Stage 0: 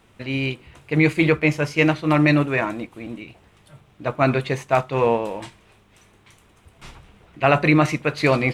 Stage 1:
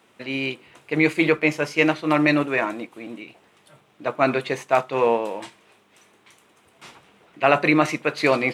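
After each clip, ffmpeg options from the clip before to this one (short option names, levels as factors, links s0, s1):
-af "highpass=250"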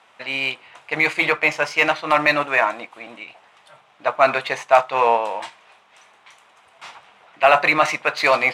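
-af "adynamicsmooth=sensitivity=5:basefreq=7500,apsyclip=3.16,lowshelf=f=510:t=q:w=1.5:g=-12,volume=0.596"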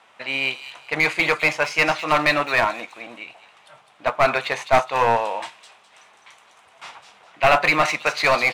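-filter_complex "[0:a]acrossover=split=3100[s0][s1];[s0]aeval=exprs='clip(val(0),-1,0.168)':c=same[s2];[s1]aecho=1:1:207|414|621|828:0.562|0.163|0.0473|0.0137[s3];[s2][s3]amix=inputs=2:normalize=0"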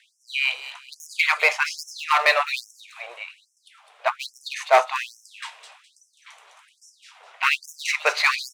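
-af "afftfilt=real='re*gte(b*sr/1024,360*pow(5400/360,0.5+0.5*sin(2*PI*1.2*pts/sr)))':imag='im*gte(b*sr/1024,360*pow(5400/360,0.5+0.5*sin(2*PI*1.2*pts/sr)))':win_size=1024:overlap=0.75,volume=1.12"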